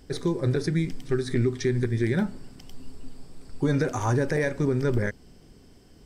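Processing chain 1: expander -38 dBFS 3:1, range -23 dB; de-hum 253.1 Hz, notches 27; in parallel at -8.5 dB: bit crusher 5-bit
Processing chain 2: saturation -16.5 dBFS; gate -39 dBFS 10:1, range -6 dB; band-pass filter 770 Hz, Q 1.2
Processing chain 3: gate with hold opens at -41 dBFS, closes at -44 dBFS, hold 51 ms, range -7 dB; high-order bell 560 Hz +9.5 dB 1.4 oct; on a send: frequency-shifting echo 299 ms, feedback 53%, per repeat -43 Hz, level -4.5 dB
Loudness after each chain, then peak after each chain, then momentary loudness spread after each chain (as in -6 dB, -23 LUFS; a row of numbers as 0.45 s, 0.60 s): -23.5 LUFS, -35.5 LUFS, -20.5 LUFS; -11.5 dBFS, -20.5 dBFS, -6.0 dBFS; 5 LU, 7 LU, 15 LU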